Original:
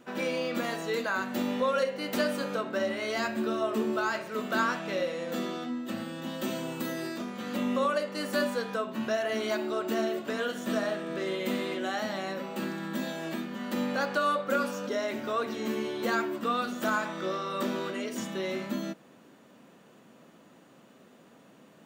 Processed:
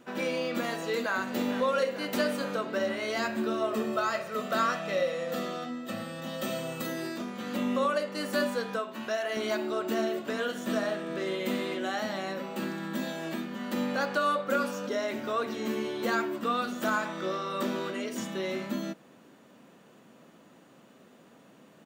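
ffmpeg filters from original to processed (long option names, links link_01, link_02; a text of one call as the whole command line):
ffmpeg -i in.wav -filter_complex "[0:a]asplit=2[link_01][link_02];[link_02]afade=type=in:start_time=0.37:duration=0.01,afade=type=out:start_time=1.15:duration=0.01,aecho=0:1:450|900|1350|1800|2250|2700|3150|3600|4050|4500|4950|5400:0.237137|0.18971|0.151768|0.121414|0.0971315|0.0777052|0.0621641|0.0497313|0.039785|0.031828|0.0254624|0.0203699[link_03];[link_01][link_03]amix=inputs=2:normalize=0,asettb=1/sr,asplit=3[link_04][link_05][link_06];[link_04]atrim=end=3.734[link_07];[link_05]atrim=start=3.73:end=6.87,asetpts=PTS-STARTPTS,afade=type=in:duration=0.004:curve=qsin,afade=type=out:start_time=3.136:duration=0.004:curve=qsin,aecho=1:1:1.6:0.53,atrim=end_sample=138474[link_08];[link_06]atrim=start=6.866[link_09];[link_07][link_08]acrossfade=duration=0.004:curve1=hsin:curve2=qsin[link_10];[link_10][link_09]acrossfade=duration=0.004:curve1=qsin:curve2=hsin,asettb=1/sr,asplit=3[link_11][link_12][link_13];[link_11]atrim=end=8.794[link_14];[link_12]atrim=start=8.79:end=9.37,asetpts=PTS-STARTPTS,afade=type=in:duration=0.004:curve=qsin,afade=type=out:start_time=0.576:duration=0.004:curve=qsin,equalizer=frequency=91:width=0.36:gain=-11.5[link_15];[link_13]atrim=start=9.366[link_16];[link_14][link_15]acrossfade=duration=0.004:curve1=hsin:curve2=qsin[link_17];[link_17][link_16]acrossfade=duration=0.004:curve1=qsin:curve2=hsin" out.wav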